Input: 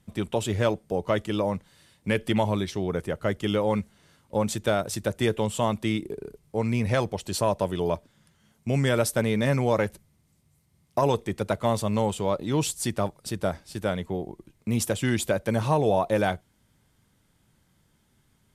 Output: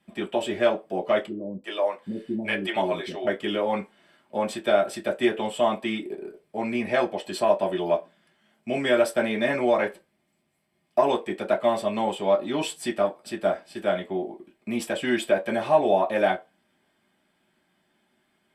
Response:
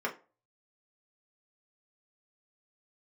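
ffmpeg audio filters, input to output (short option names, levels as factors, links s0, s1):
-filter_complex "[0:a]asettb=1/sr,asplit=3[s0][s1][s2];[s0]atrim=end=1.264[s3];[s1]atrim=start=1.26:end=3.27,asetpts=PTS-STARTPTS,afade=t=in:d=0.004:c=qsin,afade=t=out:st=2.006:d=0.004:c=qsin,acrossover=split=390[s4][s5];[s5]adelay=380[s6];[s4][s6]amix=inputs=2:normalize=0,atrim=end_sample=88641[s7];[s2]atrim=start=3.266[s8];[s3][s7]acrossfade=d=0.004:c1=hsin:c2=qsin[s9];[s9][s8]acrossfade=d=0.004:c1=qsin:c2=hsin[s10];[1:a]atrim=start_sample=2205,asetrate=66150,aresample=44100[s11];[s10][s11]afir=irnorm=-1:irlink=0,volume=0.891"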